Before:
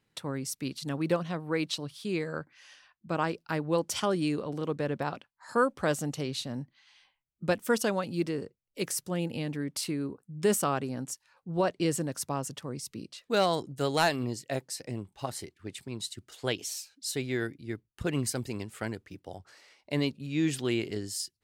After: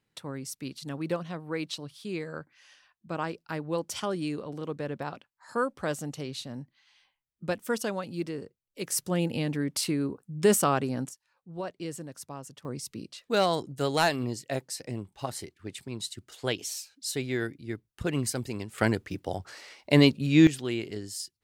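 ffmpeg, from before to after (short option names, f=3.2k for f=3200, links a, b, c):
-af "asetnsamples=n=441:p=0,asendcmd='8.92 volume volume 4dB;11.09 volume volume -8.5dB;12.65 volume volume 1dB;18.78 volume volume 10dB;20.47 volume volume -2dB',volume=-3dB"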